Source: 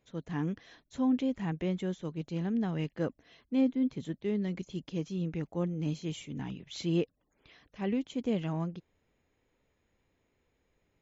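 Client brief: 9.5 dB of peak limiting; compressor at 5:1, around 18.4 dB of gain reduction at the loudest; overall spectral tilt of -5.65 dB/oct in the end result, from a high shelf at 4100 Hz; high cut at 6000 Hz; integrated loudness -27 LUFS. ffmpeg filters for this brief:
-af "lowpass=6k,highshelf=f=4.1k:g=3.5,acompressor=threshold=-45dB:ratio=5,volume=26dB,alimiter=limit=-18dB:level=0:latency=1"

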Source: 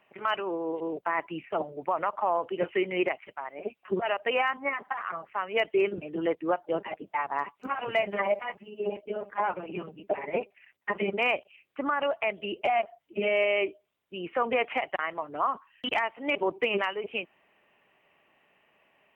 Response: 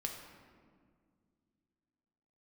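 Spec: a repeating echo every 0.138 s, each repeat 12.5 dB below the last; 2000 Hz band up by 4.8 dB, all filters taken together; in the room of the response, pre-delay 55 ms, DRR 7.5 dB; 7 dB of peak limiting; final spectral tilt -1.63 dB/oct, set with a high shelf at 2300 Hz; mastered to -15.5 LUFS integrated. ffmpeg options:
-filter_complex "[0:a]equalizer=f=2k:t=o:g=7.5,highshelf=f=2.3k:g=-3.5,alimiter=limit=-18.5dB:level=0:latency=1,aecho=1:1:138|276|414:0.237|0.0569|0.0137,asplit=2[a][b];[1:a]atrim=start_sample=2205,adelay=55[c];[b][c]afir=irnorm=-1:irlink=0,volume=-7.5dB[d];[a][d]amix=inputs=2:normalize=0,volume=14.5dB"

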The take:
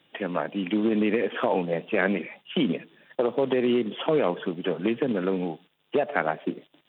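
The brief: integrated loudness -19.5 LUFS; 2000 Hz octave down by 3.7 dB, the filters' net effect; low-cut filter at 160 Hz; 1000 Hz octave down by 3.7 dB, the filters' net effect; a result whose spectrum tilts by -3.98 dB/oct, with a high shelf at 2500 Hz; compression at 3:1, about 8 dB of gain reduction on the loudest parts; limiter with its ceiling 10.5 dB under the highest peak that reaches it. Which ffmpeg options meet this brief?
-af "highpass=160,equalizer=f=1k:t=o:g=-5,equalizer=f=2k:t=o:g=-7,highshelf=f=2.5k:g=8,acompressor=threshold=-31dB:ratio=3,volume=18dB,alimiter=limit=-9dB:level=0:latency=1"

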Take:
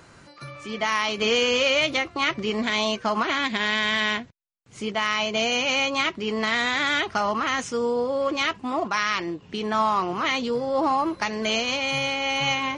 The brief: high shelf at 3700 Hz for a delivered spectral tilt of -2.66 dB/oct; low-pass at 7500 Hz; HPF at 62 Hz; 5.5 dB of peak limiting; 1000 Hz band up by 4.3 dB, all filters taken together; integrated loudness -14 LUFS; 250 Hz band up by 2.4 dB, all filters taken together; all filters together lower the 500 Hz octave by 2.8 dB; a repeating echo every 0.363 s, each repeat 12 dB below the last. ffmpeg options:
-af "highpass=62,lowpass=7.5k,equalizer=f=250:t=o:g=4,equalizer=f=500:t=o:g=-6,equalizer=f=1k:t=o:g=6,highshelf=f=3.7k:g=4.5,alimiter=limit=-12.5dB:level=0:latency=1,aecho=1:1:363|726|1089:0.251|0.0628|0.0157,volume=9dB"

